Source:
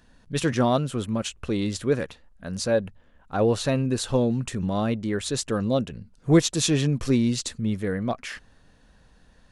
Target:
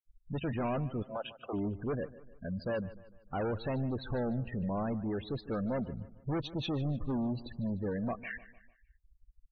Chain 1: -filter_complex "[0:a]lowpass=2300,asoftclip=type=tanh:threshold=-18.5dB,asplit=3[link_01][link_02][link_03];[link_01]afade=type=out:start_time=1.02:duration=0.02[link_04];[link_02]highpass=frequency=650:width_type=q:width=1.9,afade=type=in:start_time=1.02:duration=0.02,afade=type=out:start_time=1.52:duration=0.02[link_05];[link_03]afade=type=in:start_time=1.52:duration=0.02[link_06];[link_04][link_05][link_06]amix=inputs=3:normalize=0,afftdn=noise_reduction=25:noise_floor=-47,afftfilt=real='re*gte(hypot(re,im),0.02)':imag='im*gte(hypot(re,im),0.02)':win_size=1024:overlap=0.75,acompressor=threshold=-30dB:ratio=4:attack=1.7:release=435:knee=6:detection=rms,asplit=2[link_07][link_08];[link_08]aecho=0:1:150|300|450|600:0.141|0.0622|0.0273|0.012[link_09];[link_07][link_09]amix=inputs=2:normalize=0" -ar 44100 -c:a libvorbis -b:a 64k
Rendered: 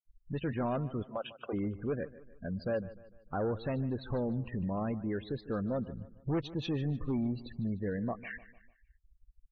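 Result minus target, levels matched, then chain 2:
soft clipping: distortion −6 dB
-filter_complex "[0:a]lowpass=2300,asoftclip=type=tanh:threshold=-27.5dB,asplit=3[link_01][link_02][link_03];[link_01]afade=type=out:start_time=1.02:duration=0.02[link_04];[link_02]highpass=frequency=650:width_type=q:width=1.9,afade=type=in:start_time=1.02:duration=0.02,afade=type=out:start_time=1.52:duration=0.02[link_05];[link_03]afade=type=in:start_time=1.52:duration=0.02[link_06];[link_04][link_05][link_06]amix=inputs=3:normalize=0,afftdn=noise_reduction=25:noise_floor=-47,afftfilt=real='re*gte(hypot(re,im),0.02)':imag='im*gte(hypot(re,im),0.02)':win_size=1024:overlap=0.75,acompressor=threshold=-30dB:ratio=4:attack=1.7:release=435:knee=6:detection=rms,asplit=2[link_07][link_08];[link_08]aecho=0:1:150|300|450|600:0.141|0.0622|0.0273|0.012[link_09];[link_07][link_09]amix=inputs=2:normalize=0" -ar 44100 -c:a libvorbis -b:a 64k

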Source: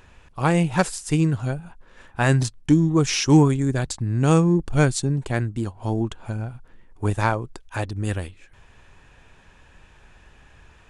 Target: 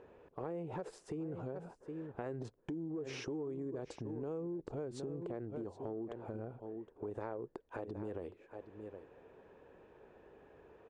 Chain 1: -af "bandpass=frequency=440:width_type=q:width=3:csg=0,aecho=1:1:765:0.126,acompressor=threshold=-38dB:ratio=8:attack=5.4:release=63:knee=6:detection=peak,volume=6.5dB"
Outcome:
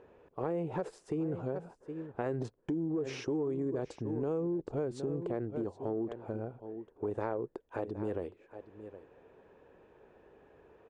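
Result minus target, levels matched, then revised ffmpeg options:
downward compressor: peak gain reduction −7.5 dB
-af "bandpass=frequency=440:width_type=q:width=3:csg=0,aecho=1:1:765:0.126,acompressor=threshold=-46.5dB:ratio=8:attack=5.4:release=63:knee=6:detection=peak,volume=6.5dB"

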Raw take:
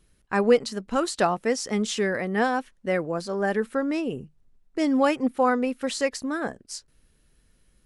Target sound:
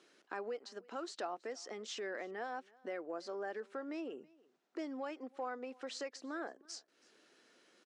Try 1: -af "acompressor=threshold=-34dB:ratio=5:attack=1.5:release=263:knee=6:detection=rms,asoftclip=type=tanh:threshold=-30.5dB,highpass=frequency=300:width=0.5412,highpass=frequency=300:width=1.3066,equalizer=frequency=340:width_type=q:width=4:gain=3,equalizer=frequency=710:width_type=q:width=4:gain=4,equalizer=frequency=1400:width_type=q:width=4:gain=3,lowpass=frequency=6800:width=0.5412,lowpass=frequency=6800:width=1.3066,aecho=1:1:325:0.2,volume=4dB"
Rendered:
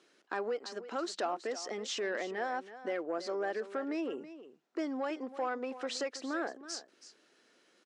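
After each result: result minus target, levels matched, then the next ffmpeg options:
downward compressor: peak gain reduction −7.5 dB; echo-to-direct +10.5 dB
-af "acompressor=threshold=-43.5dB:ratio=5:attack=1.5:release=263:knee=6:detection=rms,asoftclip=type=tanh:threshold=-30.5dB,highpass=frequency=300:width=0.5412,highpass=frequency=300:width=1.3066,equalizer=frequency=340:width_type=q:width=4:gain=3,equalizer=frequency=710:width_type=q:width=4:gain=4,equalizer=frequency=1400:width_type=q:width=4:gain=3,lowpass=frequency=6800:width=0.5412,lowpass=frequency=6800:width=1.3066,aecho=1:1:325:0.2,volume=4dB"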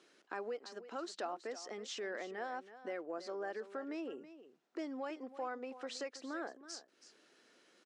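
echo-to-direct +10.5 dB
-af "acompressor=threshold=-43.5dB:ratio=5:attack=1.5:release=263:knee=6:detection=rms,asoftclip=type=tanh:threshold=-30.5dB,highpass=frequency=300:width=0.5412,highpass=frequency=300:width=1.3066,equalizer=frequency=340:width_type=q:width=4:gain=3,equalizer=frequency=710:width_type=q:width=4:gain=4,equalizer=frequency=1400:width_type=q:width=4:gain=3,lowpass=frequency=6800:width=0.5412,lowpass=frequency=6800:width=1.3066,aecho=1:1:325:0.0596,volume=4dB"

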